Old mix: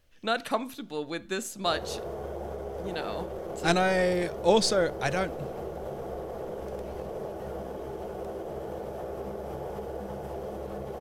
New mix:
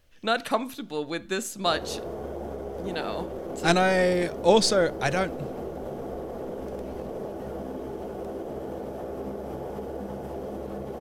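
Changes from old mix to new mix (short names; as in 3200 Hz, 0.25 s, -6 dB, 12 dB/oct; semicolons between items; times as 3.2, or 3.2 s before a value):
speech +3.0 dB; background: add bell 260 Hz +12 dB 0.51 oct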